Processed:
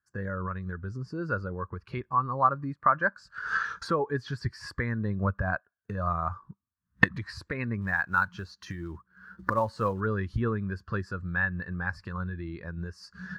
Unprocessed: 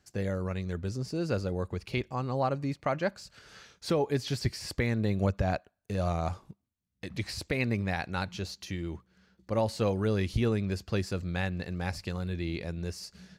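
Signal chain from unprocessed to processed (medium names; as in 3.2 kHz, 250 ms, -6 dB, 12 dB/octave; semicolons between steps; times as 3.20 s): recorder AGC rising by 40 dB/s; high-order bell 1.3 kHz +13.5 dB 1.1 oct; 7.81–10.01 s: short-mantissa float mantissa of 2-bit; spectral contrast expander 1.5:1; trim -4 dB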